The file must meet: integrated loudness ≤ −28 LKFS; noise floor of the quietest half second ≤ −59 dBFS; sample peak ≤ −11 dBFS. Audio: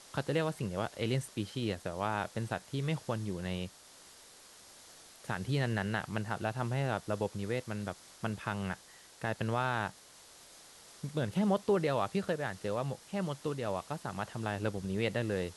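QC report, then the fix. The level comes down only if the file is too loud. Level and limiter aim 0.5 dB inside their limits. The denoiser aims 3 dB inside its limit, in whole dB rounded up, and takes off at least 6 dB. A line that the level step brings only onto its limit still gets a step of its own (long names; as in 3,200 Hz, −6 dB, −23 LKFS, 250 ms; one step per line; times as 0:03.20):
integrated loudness −35.5 LKFS: in spec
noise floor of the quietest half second −56 dBFS: out of spec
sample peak −17.5 dBFS: in spec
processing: broadband denoise 6 dB, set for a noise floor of −56 dBFS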